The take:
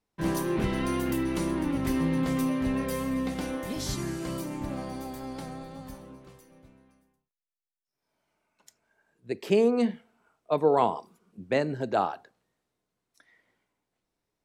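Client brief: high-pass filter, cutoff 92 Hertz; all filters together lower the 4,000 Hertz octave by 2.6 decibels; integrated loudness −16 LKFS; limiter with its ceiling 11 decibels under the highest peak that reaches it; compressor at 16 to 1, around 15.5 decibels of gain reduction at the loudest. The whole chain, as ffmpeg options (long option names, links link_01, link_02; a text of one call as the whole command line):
ffmpeg -i in.wav -af "highpass=92,equalizer=frequency=4000:width_type=o:gain=-3.5,acompressor=threshold=-33dB:ratio=16,volume=25.5dB,alimiter=limit=-7dB:level=0:latency=1" out.wav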